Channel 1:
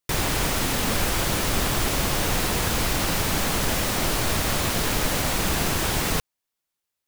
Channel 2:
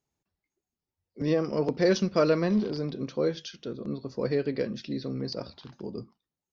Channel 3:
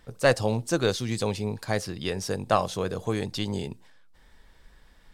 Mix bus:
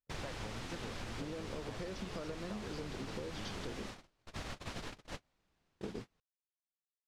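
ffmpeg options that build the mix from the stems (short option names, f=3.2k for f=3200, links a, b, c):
-filter_complex "[0:a]volume=-11dB[a];[1:a]acompressor=threshold=-32dB:ratio=5,volume=3dB,asplit=3[b][c][d];[b]atrim=end=3.86,asetpts=PTS-STARTPTS,afade=t=out:st=3.856:d=0.004:c=hsin[e];[c]atrim=start=3.86:end=5.8,asetpts=PTS-STARTPTS,volume=0[f];[d]atrim=start=5.8,asetpts=PTS-STARTPTS,afade=t=in:d=0.004:c=hsin[g];[e][f][g]concat=n=3:v=0:a=1[h];[2:a]bass=f=250:g=2,treble=f=4k:g=-5,acompressor=threshold=-29dB:ratio=6,volume=-7dB,asplit=2[i][j];[j]apad=whole_len=311936[k];[a][k]sidechaingate=range=-7dB:threshold=-59dB:ratio=16:detection=peak[l];[l][h][i]amix=inputs=3:normalize=0,agate=range=-37dB:threshold=-34dB:ratio=16:detection=peak,lowpass=5.5k,acompressor=threshold=-39dB:ratio=10"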